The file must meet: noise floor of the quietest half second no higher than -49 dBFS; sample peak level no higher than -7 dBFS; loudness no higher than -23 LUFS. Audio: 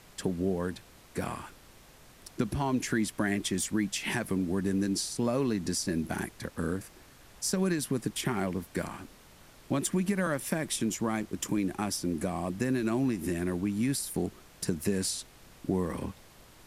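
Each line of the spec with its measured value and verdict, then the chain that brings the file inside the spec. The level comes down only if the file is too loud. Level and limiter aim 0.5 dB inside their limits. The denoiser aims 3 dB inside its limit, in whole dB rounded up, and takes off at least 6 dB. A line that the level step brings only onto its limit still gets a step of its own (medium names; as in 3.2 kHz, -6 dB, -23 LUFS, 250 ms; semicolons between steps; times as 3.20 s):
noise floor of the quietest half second -55 dBFS: pass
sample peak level -14.5 dBFS: pass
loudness -31.5 LUFS: pass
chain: none needed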